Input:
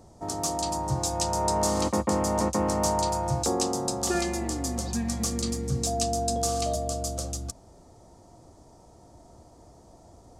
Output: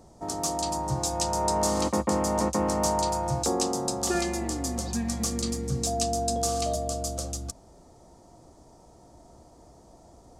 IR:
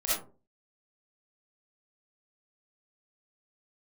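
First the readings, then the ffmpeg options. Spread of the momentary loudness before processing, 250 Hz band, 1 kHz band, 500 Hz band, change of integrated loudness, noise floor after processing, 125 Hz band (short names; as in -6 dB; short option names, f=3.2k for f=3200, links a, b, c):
5 LU, 0.0 dB, 0.0 dB, 0.0 dB, 0.0 dB, -54 dBFS, -1.5 dB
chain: -af "equalizer=f=97:t=o:w=0.38:g=-6.5"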